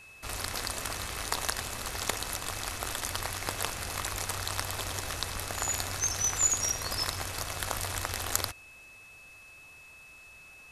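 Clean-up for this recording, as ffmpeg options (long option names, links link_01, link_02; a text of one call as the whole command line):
ffmpeg -i in.wav -af "bandreject=frequency=2600:width=30" out.wav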